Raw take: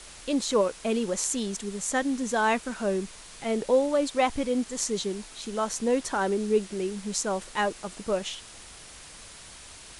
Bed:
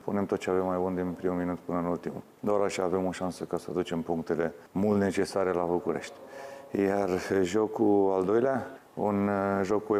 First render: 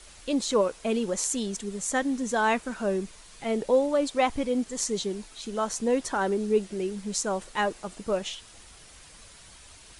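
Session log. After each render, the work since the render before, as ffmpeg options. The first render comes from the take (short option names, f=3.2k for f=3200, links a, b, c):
-af "afftdn=nr=6:nf=-47"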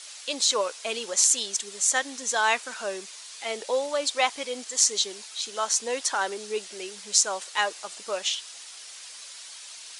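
-af "highpass=610,equalizer=f=5.2k:t=o:w=2.3:g=11"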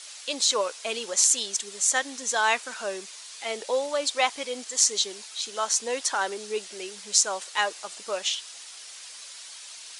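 -af anull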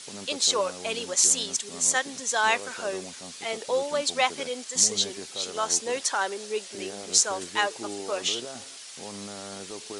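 -filter_complex "[1:a]volume=-13.5dB[a];[0:a][a]amix=inputs=2:normalize=0"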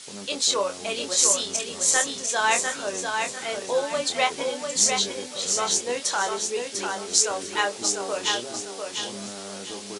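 -filter_complex "[0:a]asplit=2[a][b];[b]adelay=25,volume=-6.5dB[c];[a][c]amix=inputs=2:normalize=0,asplit=2[d][e];[e]aecho=0:1:697|1394|2091|2788:0.562|0.174|0.054|0.0168[f];[d][f]amix=inputs=2:normalize=0"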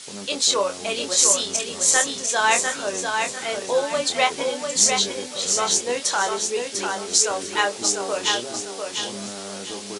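-af "volume=3dB,alimiter=limit=-1dB:level=0:latency=1"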